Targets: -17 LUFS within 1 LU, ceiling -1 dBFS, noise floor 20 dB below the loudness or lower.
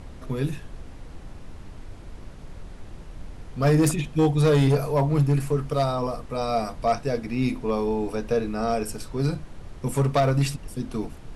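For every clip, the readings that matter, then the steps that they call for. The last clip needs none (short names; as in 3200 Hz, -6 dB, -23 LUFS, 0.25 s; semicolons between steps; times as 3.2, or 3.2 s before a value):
clipped 1.0%; flat tops at -14.0 dBFS; noise floor -42 dBFS; noise floor target -45 dBFS; loudness -24.5 LUFS; peak -14.0 dBFS; loudness target -17.0 LUFS
-> clip repair -14 dBFS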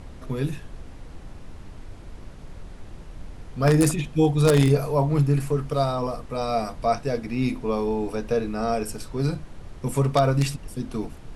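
clipped 0.0%; noise floor -42 dBFS; noise floor target -44 dBFS
-> noise print and reduce 6 dB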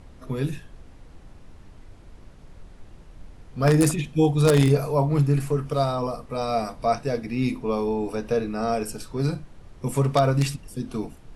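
noise floor -47 dBFS; loudness -24.0 LUFS; peak -5.0 dBFS; loudness target -17.0 LUFS
-> gain +7 dB; limiter -1 dBFS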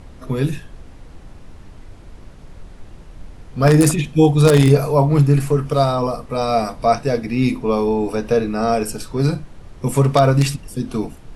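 loudness -17.5 LUFS; peak -1.0 dBFS; noise floor -40 dBFS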